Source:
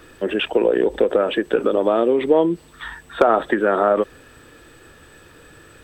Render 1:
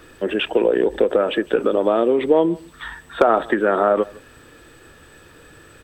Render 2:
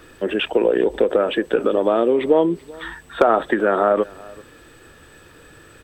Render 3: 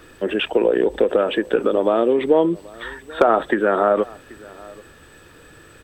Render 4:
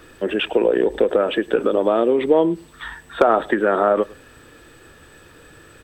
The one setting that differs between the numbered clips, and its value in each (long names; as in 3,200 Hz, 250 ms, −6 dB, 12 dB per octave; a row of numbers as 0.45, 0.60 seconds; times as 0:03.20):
single-tap delay, delay time: 159, 385, 782, 105 milliseconds